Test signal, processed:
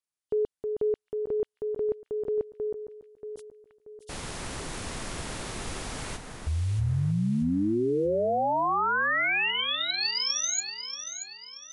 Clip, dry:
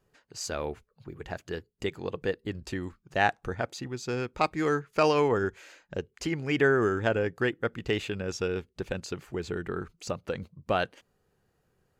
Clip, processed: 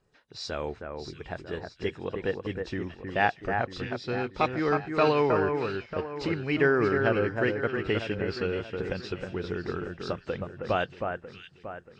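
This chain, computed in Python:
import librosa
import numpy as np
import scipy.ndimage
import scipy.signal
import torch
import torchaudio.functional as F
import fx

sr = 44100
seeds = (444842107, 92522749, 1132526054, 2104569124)

y = fx.freq_compress(x, sr, knee_hz=2800.0, ratio=1.5)
y = fx.echo_alternate(y, sr, ms=316, hz=2100.0, feedback_pct=64, wet_db=-5.0)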